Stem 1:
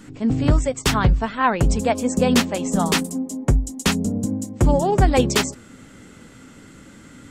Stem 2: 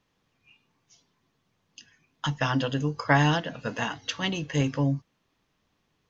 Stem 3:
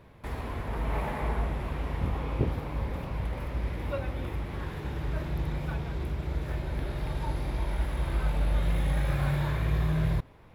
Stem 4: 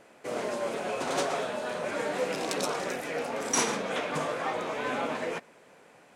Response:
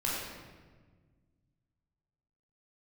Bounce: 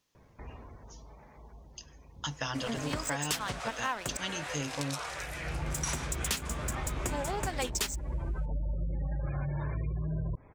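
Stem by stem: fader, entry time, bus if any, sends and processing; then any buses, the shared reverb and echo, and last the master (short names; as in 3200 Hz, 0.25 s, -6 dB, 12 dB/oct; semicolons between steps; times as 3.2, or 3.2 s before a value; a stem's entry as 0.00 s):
-3.5 dB, 2.45 s, muted 4.17–5.72, no send, tilt +3 dB/oct; crossover distortion -29.5 dBFS
-7.0 dB, 0.00 s, no send, tone controls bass -3 dB, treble +13 dB
-0.5 dB, 0.15 s, no send, spectral gate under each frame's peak -25 dB strong; auto duck -22 dB, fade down 1.10 s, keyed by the second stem
-2.0 dB, 2.30 s, no send, HPF 1000 Hz 12 dB/oct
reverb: off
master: compressor 5:1, threshold -30 dBFS, peak gain reduction 14.5 dB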